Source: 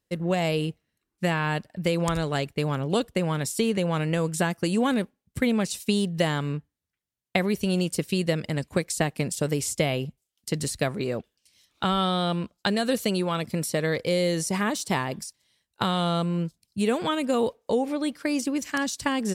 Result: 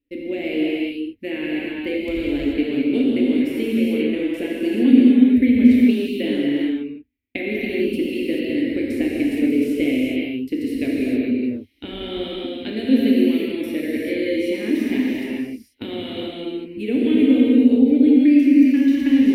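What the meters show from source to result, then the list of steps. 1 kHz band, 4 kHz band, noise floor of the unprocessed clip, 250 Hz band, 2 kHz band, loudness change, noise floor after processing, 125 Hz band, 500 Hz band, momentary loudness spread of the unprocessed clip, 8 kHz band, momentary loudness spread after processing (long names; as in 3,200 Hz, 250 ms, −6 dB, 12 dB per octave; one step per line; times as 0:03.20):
below −10 dB, −1.0 dB, −83 dBFS, +12.0 dB, +1.0 dB, +7.5 dB, −40 dBFS, −9.5 dB, +3.0 dB, 6 LU, below −15 dB, 15 LU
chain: drawn EQ curve 100 Hz 0 dB, 170 Hz −29 dB, 250 Hz +12 dB, 740 Hz −19 dB, 1,200 Hz −28 dB, 2,300 Hz 0 dB, 7,600 Hz −29 dB, 13,000 Hz −9 dB
reverb whose tail is shaped and stops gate 460 ms flat, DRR −5.5 dB
level +1 dB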